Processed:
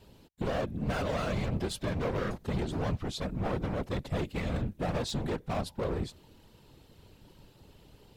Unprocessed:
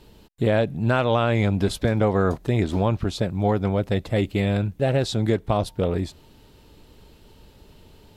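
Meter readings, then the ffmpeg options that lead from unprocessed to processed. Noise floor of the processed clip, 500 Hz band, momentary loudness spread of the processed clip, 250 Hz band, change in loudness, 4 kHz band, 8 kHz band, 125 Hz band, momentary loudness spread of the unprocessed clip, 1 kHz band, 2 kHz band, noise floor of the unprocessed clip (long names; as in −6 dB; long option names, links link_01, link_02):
−60 dBFS, −11.5 dB, 3 LU, −10.5 dB, −10.5 dB, −7.5 dB, −5.5 dB, −11.0 dB, 5 LU, −10.0 dB, −9.5 dB, −52 dBFS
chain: -af "asoftclip=type=hard:threshold=-23dB,afftfilt=real='hypot(re,im)*cos(2*PI*random(0))':imag='hypot(re,im)*sin(2*PI*random(1))':win_size=512:overlap=0.75"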